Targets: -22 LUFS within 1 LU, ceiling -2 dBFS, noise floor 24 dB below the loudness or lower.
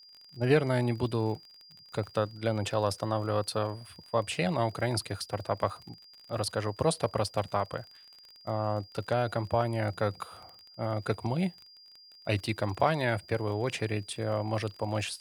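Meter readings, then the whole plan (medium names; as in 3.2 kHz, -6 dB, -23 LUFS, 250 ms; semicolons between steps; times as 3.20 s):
tick rate 30 per s; steady tone 4.8 kHz; tone level -52 dBFS; loudness -31.5 LUFS; peak level -12.0 dBFS; loudness target -22.0 LUFS
-> de-click; band-stop 4.8 kHz, Q 30; trim +9.5 dB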